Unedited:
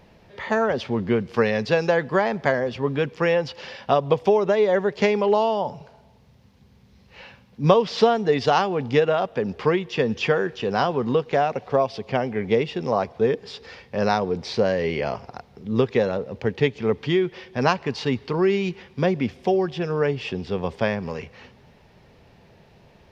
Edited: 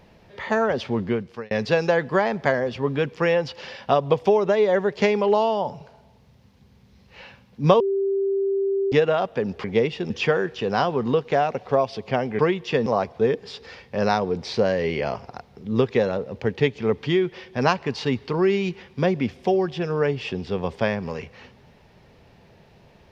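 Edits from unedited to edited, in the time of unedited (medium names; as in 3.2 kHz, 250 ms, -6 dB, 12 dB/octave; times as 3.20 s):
0.99–1.51 s: fade out
7.80–8.92 s: bleep 392 Hz -19.5 dBFS
9.64–10.11 s: swap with 12.40–12.86 s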